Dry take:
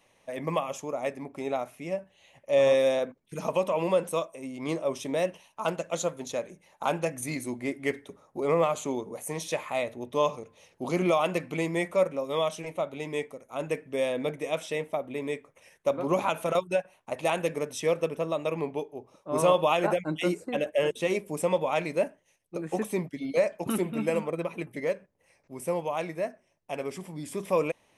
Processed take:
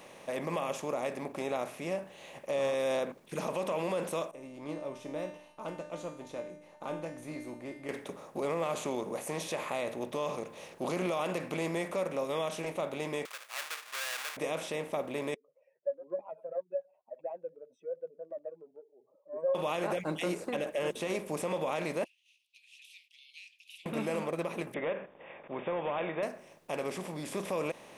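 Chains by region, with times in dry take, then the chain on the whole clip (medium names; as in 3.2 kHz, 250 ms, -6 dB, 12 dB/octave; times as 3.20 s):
4.31–7.89 s: tilt EQ -3 dB/octave + feedback comb 300 Hz, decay 0.41 s, mix 90%
13.25–14.37 s: square wave that keeps the level + high-pass 1.4 kHz 24 dB/octave
15.34–19.55 s: spectral contrast enhancement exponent 3.1 + band-pass filter 590 Hz, Q 2.7 + upward expansion 2.5:1, over -39 dBFS
22.04–23.86 s: steep high-pass 2.6 kHz 96 dB/octave + distance through air 350 m
24.74–26.23 s: compression 2.5:1, threshold -34 dBFS + overdrive pedal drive 15 dB, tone 2.1 kHz, clips at -22 dBFS + brick-wall FIR low-pass 3.7 kHz
whole clip: spectral levelling over time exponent 0.6; peak limiter -16 dBFS; trim -7 dB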